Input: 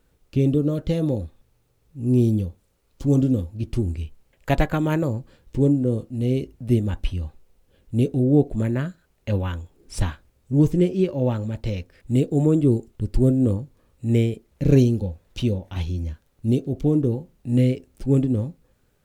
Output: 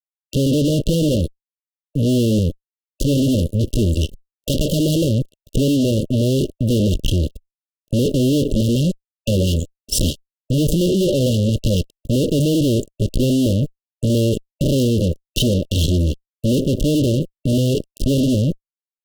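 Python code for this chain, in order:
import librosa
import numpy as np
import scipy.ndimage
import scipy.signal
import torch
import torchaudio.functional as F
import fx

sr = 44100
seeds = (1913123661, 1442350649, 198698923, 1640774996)

y = fx.peak_eq(x, sr, hz=74.0, db=-7.5, octaves=0.72)
y = fx.fuzz(y, sr, gain_db=39.0, gate_db=-44.0)
y = fx.cheby_harmonics(y, sr, harmonics=(3, 6), levels_db=(-19, -19), full_scale_db=-8.5)
y = fx.brickwall_bandstop(y, sr, low_hz=630.0, high_hz=2700.0)
y = y * librosa.db_to_amplitude(1.0)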